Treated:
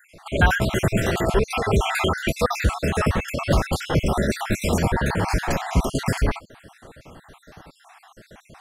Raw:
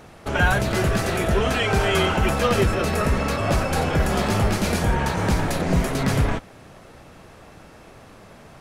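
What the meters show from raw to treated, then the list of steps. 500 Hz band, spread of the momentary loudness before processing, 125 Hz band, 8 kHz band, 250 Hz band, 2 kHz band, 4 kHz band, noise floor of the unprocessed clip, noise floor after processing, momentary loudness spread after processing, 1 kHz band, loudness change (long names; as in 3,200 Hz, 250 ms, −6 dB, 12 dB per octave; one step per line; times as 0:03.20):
−1.5 dB, 3 LU, −1.0 dB, −1.0 dB, −1.0 dB, −1.0 dB, −2.0 dB, −46 dBFS, −56 dBFS, 4 LU, −1.5 dB, −1.0 dB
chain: time-frequency cells dropped at random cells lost 55%
level +2.5 dB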